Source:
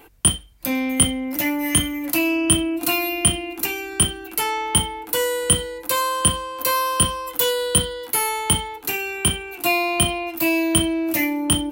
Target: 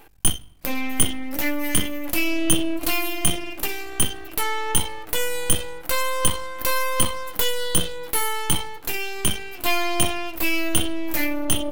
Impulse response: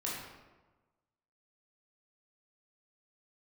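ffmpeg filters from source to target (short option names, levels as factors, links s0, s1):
-filter_complex "[0:a]aeval=exprs='max(val(0),0)':c=same,flanger=delay=1.2:depth=5:regen=78:speed=0.18:shape=sinusoidal,asplit=2[s0][s1];[1:a]atrim=start_sample=2205[s2];[s1][s2]afir=irnorm=-1:irlink=0,volume=0.0531[s3];[s0][s3]amix=inputs=2:normalize=0,volume=1.88"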